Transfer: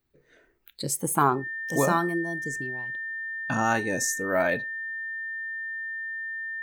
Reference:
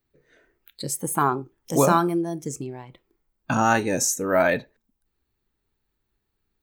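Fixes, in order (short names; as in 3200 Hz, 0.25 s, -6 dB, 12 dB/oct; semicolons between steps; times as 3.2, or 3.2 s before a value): notch 1800 Hz, Q 30; gain 0 dB, from 1.44 s +5 dB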